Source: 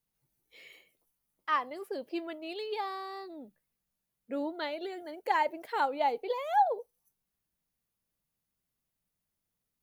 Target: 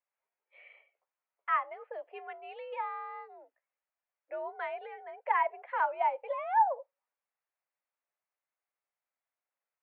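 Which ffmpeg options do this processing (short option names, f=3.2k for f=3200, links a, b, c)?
-af "highpass=f=480:t=q:w=0.5412,highpass=f=480:t=q:w=1.307,lowpass=f=2.4k:t=q:w=0.5176,lowpass=f=2.4k:t=q:w=0.7071,lowpass=f=2.4k:t=q:w=1.932,afreqshift=68"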